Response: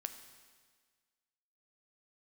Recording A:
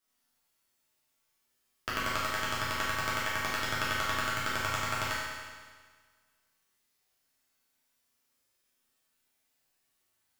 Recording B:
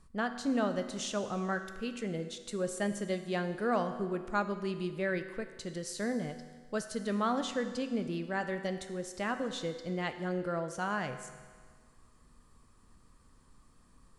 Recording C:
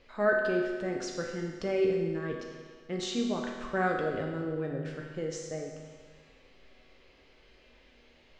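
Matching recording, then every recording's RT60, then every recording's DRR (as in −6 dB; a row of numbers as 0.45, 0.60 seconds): B; 1.6, 1.6, 1.6 seconds; −9.0, 7.5, −0.5 decibels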